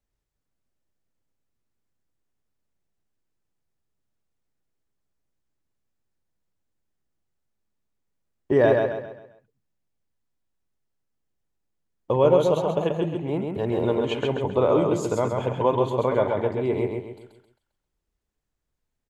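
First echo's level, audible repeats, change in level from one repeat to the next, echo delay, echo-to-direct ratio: -4.0 dB, 4, -8.0 dB, 0.133 s, -3.5 dB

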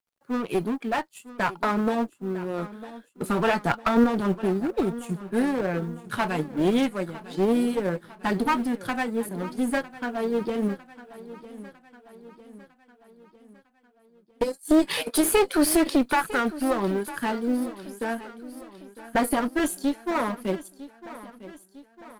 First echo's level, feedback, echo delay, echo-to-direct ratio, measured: -16.5 dB, 53%, 0.953 s, -15.0 dB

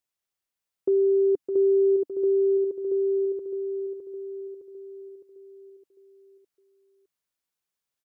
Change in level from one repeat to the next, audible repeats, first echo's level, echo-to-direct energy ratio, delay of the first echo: -5.5 dB, 5, -7.0 dB, -5.5 dB, 0.611 s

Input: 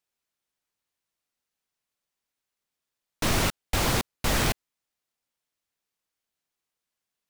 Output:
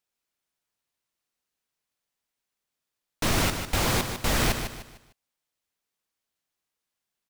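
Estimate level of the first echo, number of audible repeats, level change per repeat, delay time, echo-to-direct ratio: -8.0 dB, 3, -9.0 dB, 0.151 s, -7.5 dB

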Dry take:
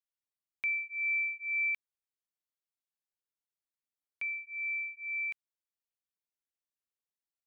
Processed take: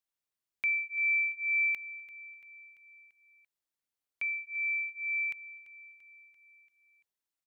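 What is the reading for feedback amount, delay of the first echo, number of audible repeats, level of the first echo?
60%, 0.34 s, 4, -18.0 dB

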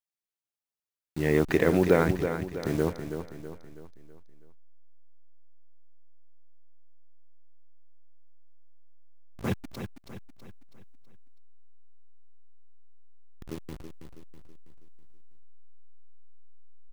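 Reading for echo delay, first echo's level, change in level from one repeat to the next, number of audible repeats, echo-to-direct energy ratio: 0.325 s, -8.5 dB, -6.5 dB, 4, -7.5 dB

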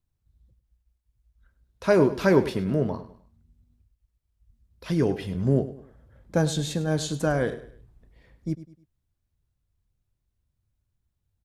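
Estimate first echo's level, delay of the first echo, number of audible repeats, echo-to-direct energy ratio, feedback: -15.0 dB, 0.102 s, 3, -14.5 dB, 36%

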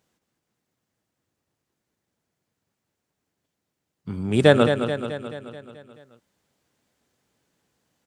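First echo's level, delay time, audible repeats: -8.0 dB, 0.216 s, 6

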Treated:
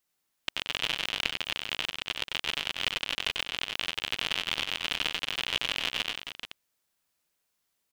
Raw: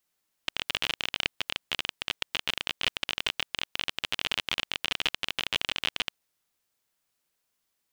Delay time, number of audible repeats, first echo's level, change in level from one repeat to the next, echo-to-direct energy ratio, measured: 94 ms, 3, -4.5 dB, no steady repeat, -3.0 dB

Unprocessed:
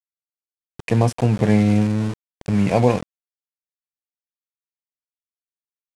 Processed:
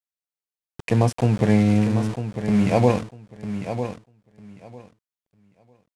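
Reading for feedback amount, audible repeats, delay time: 18%, 2, 0.95 s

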